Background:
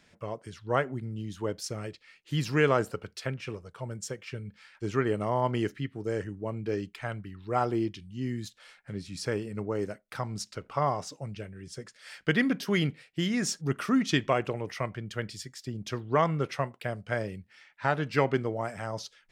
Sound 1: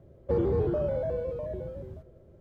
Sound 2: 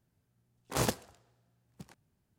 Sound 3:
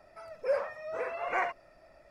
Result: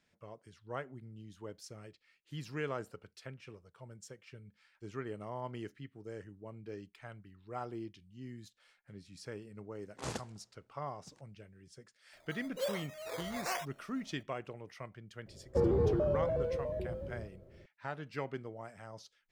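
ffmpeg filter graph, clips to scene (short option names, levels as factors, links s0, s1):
-filter_complex "[0:a]volume=0.2[s0];[2:a]lowpass=f=9200:w=0.5412,lowpass=f=9200:w=1.3066[s1];[3:a]acrusher=samples=13:mix=1:aa=0.000001:lfo=1:lforange=7.8:lforate=1.1[s2];[s1]atrim=end=2.38,asetpts=PTS-STARTPTS,volume=0.335,afade=t=in:d=0.004:c=hsin,afade=t=out:st=2.376:d=0.004:c=hsin,adelay=9270[s3];[s2]atrim=end=2.1,asetpts=PTS-STARTPTS,volume=0.447,afade=t=in:d=0.004:c=hsin,afade=t=out:st=2.096:d=0.004:c=hsin,adelay=12130[s4];[1:a]atrim=end=2.4,asetpts=PTS-STARTPTS,volume=0.75,afade=t=in:d=0.004:c=hsin,afade=t=out:st=2.396:d=0.004:c=hsin,adelay=15260[s5];[s0][s3][s4][s5]amix=inputs=4:normalize=0"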